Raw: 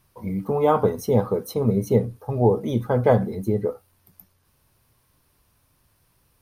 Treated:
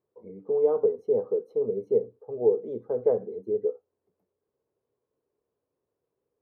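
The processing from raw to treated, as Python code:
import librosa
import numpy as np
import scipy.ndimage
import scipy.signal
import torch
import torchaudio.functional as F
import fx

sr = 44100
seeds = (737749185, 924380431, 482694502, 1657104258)

y = fx.bandpass_q(x, sr, hz=440.0, q=5.5)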